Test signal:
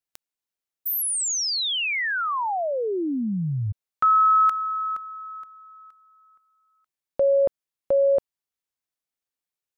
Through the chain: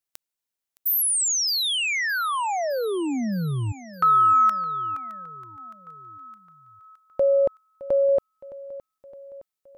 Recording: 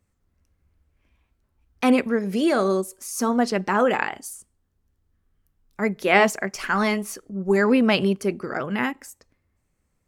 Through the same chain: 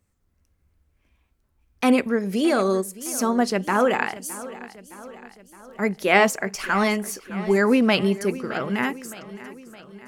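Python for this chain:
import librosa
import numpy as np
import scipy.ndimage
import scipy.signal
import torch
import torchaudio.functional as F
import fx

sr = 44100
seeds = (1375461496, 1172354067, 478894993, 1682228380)

p1 = fx.high_shelf(x, sr, hz=6100.0, db=4.0)
y = p1 + fx.echo_feedback(p1, sr, ms=615, feedback_pct=57, wet_db=-17, dry=0)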